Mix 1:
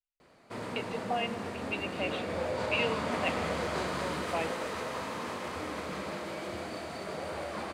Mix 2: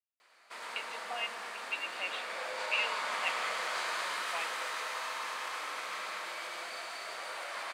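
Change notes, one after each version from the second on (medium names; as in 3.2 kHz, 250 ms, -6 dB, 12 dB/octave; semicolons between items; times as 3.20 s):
background: send +11.5 dB; master: add high-pass 1.2 kHz 12 dB/octave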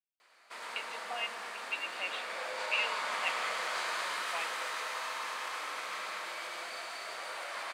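no change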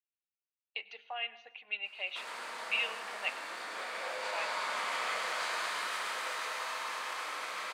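background: entry +1.65 s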